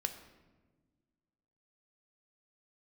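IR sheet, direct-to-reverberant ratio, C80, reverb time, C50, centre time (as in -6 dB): 7.0 dB, 12.0 dB, 1.4 s, 10.5 dB, 14 ms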